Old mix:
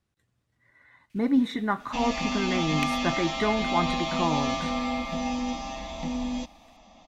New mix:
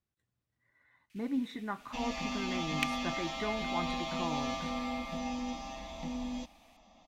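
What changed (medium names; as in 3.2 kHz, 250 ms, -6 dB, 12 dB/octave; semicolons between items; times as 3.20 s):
speech -11.0 dB; second sound -7.5 dB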